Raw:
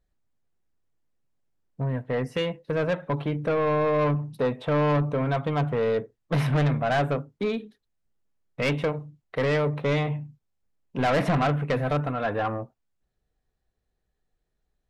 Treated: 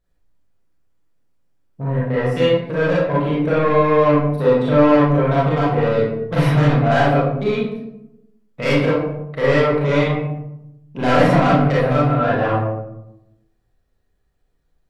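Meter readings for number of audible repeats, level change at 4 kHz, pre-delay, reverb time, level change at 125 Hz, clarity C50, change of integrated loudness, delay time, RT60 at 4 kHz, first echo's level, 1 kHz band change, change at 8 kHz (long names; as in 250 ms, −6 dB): no echo audible, +7.5 dB, 31 ms, 0.85 s, +8.0 dB, −1.5 dB, +9.0 dB, no echo audible, 0.45 s, no echo audible, +9.0 dB, can't be measured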